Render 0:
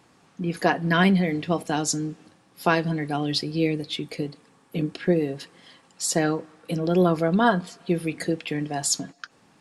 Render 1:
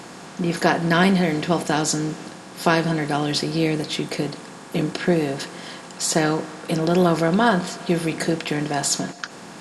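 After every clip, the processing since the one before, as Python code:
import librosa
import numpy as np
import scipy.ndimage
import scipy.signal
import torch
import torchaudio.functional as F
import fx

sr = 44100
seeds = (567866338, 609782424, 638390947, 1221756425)

y = fx.bin_compress(x, sr, power=0.6)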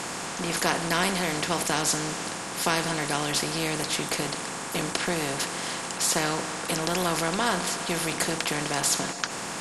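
y = fx.graphic_eq_10(x, sr, hz=(1000, 4000, 8000), db=(5, -4, 3))
y = fx.spectral_comp(y, sr, ratio=2.0)
y = y * librosa.db_to_amplitude(-6.0)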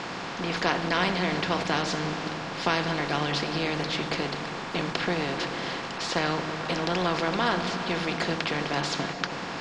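y = scipy.signal.sosfilt(scipy.signal.butter(4, 4700.0, 'lowpass', fs=sr, output='sos'), x)
y = fx.echo_opening(y, sr, ms=109, hz=200, octaves=1, feedback_pct=70, wet_db=-6)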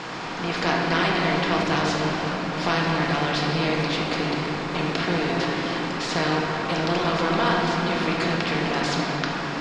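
y = fx.room_shoebox(x, sr, seeds[0], volume_m3=200.0, walls='hard', distance_m=0.58)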